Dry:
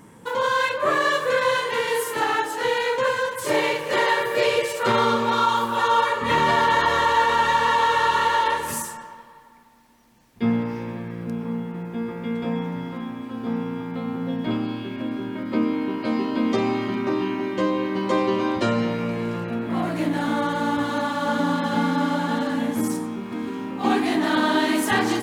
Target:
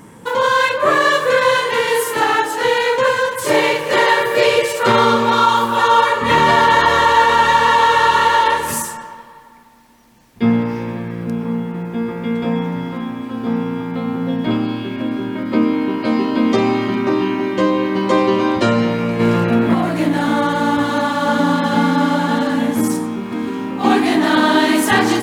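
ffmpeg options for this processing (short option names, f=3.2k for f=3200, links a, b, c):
-filter_complex "[0:a]asplit=3[a][b][c];[a]afade=t=out:st=19.19:d=0.02[d];[b]acontrast=50,afade=t=in:st=19.19:d=0.02,afade=t=out:st=19.73:d=0.02[e];[c]afade=t=in:st=19.73:d=0.02[f];[d][e][f]amix=inputs=3:normalize=0,volume=7dB"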